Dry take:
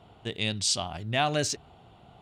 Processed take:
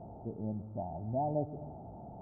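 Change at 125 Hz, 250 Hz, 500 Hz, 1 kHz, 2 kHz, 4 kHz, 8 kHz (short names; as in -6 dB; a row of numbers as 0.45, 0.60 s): -4.5 dB, -3.0 dB, -4.5 dB, -6.5 dB, under -40 dB, under -40 dB, under -40 dB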